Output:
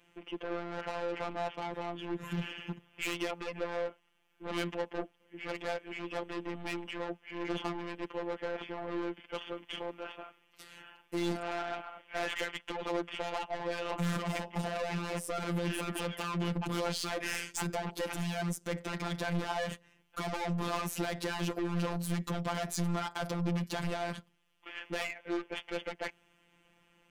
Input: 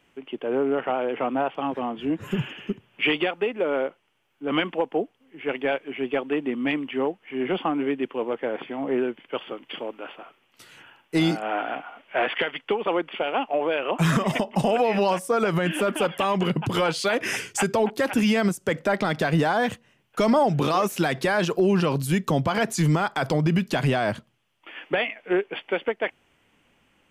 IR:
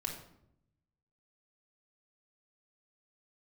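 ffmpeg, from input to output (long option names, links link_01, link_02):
-af "aeval=exprs='(tanh(28.2*val(0)+0.2)-tanh(0.2))/28.2':channel_layout=same,afftfilt=real='hypot(re,im)*cos(PI*b)':imag='0':win_size=1024:overlap=0.75"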